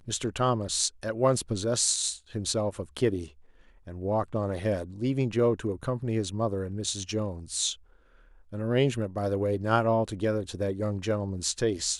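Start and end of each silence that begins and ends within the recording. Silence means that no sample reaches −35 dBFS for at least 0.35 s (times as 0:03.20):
0:03.26–0:03.88
0:07.73–0:08.53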